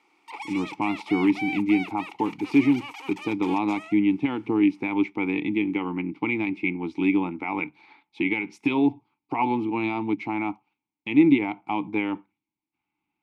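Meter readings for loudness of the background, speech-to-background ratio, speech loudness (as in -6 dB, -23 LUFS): -37.0 LUFS, 11.5 dB, -25.5 LUFS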